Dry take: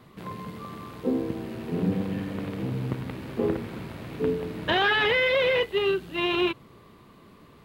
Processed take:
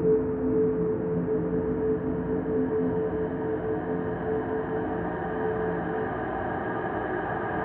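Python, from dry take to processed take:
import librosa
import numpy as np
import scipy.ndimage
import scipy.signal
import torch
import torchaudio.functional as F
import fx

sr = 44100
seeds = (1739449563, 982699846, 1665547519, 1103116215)

y = fx.rider(x, sr, range_db=4, speed_s=0.5)
y = scipy.signal.sosfilt(scipy.signal.butter(4, 1500.0, 'lowpass', fs=sr, output='sos'), y)
y = fx.paulstretch(y, sr, seeds[0], factor=20.0, window_s=1.0, from_s=4.29)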